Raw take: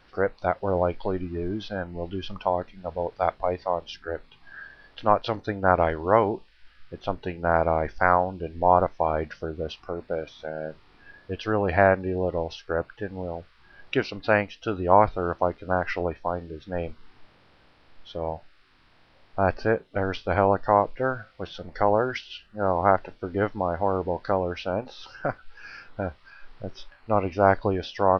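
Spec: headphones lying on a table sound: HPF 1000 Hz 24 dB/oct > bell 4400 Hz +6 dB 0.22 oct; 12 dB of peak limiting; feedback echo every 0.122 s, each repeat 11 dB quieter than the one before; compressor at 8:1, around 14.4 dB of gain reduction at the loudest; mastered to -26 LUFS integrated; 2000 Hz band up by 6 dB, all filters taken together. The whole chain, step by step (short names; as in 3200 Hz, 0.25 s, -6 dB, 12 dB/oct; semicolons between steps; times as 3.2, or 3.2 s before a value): bell 2000 Hz +8.5 dB; compressor 8:1, threshold -26 dBFS; limiter -23 dBFS; HPF 1000 Hz 24 dB/oct; bell 4400 Hz +6 dB 0.22 oct; feedback echo 0.122 s, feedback 28%, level -11 dB; gain +14.5 dB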